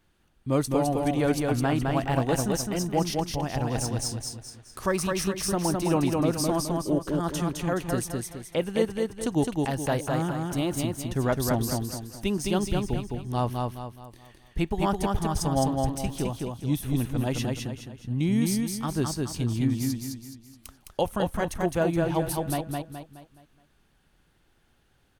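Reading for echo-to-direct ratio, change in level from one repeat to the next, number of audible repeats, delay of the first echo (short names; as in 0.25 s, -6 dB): -2.0 dB, -8.0 dB, 5, 0.211 s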